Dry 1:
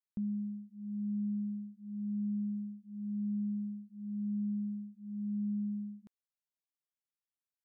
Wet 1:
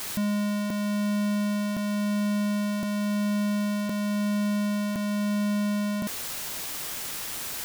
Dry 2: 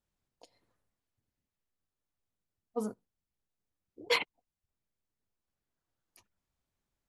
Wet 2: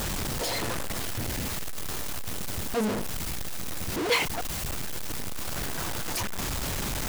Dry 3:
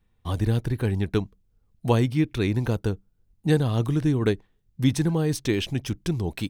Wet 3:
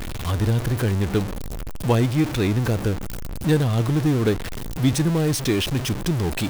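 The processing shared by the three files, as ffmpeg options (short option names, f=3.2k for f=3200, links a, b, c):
-af "aeval=exprs='val(0)+0.5*0.0708*sgn(val(0))':c=same"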